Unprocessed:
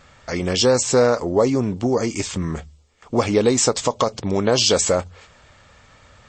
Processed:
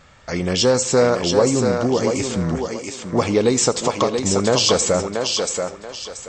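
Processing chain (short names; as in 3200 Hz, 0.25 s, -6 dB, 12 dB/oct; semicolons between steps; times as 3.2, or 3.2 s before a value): bell 170 Hz +4.5 dB 0.22 oct; thinning echo 0.682 s, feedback 31%, high-pass 300 Hz, level -4 dB; reverb RT60 0.50 s, pre-delay 61 ms, DRR 17.5 dB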